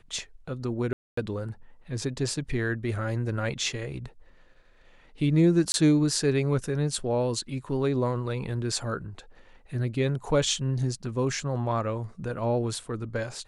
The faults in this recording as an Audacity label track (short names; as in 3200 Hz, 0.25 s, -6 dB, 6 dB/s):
0.930000	1.170000	gap 0.244 s
5.720000	5.740000	gap 21 ms